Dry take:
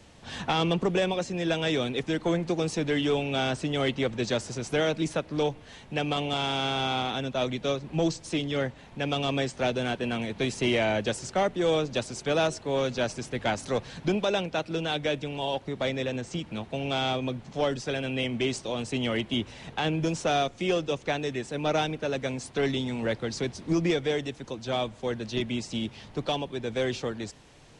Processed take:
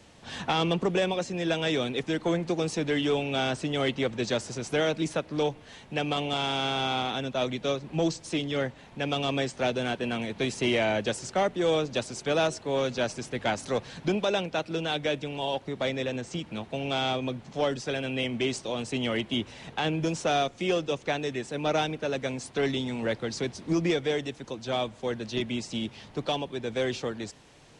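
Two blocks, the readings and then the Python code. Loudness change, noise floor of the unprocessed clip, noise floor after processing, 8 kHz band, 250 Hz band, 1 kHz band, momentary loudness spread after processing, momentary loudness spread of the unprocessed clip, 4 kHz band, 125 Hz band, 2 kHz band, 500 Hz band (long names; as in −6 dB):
−0.5 dB, −50 dBFS, −51 dBFS, 0.0 dB, −0.5 dB, 0.0 dB, 6 LU, 6 LU, 0.0 dB, −2.0 dB, 0.0 dB, 0.0 dB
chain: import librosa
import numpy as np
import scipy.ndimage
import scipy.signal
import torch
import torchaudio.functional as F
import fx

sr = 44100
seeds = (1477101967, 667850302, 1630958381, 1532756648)

y = fx.low_shelf(x, sr, hz=83.0, db=-7.0)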